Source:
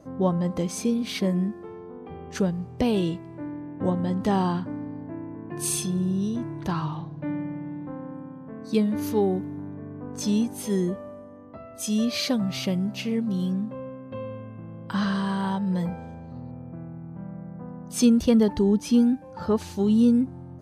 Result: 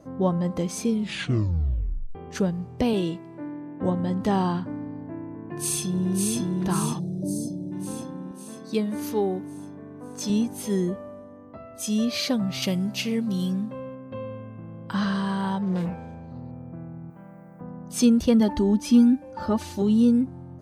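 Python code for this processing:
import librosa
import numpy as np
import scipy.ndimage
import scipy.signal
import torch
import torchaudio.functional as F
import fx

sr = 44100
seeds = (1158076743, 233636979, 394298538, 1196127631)

y = fx.highpass(x, sr, hz=160.0, slope=12, at=(2.93, 3.83))
y = fx.echo_throw(y, sr, start_s=5.38, length_s=1.0, ms=550, feedback_pct=60, wet_db=-2.0)
y = fx.ellip_bandstop(y, sr, low_hz=660.0, high_hz=4500.0, order=3, stop_db=40, at=(6.98, 7.71), fade=0.02)
y = fx.highpass(y, sr, hz=260.0, slope=6, at=(8.31, 10.3))
y = fx.high_shelf(y, sr, hz=2700.0, db=9.0, at=(12.62, 13.95))
y = fx.doppler_dist(y, sr, depth_ms=0.3, at=(15.62, 16.53))
y = fx.riaa(y, sr, side='recording', at=(17.1, 17.61))
y = fx.comb(y, sr, ms=3.4, depth=0.7, at=(18.4, 19.82))
y = fx.edit(y, sr, fx.tape_stop(start_s=0.86, length_s=1.29), tone=tone)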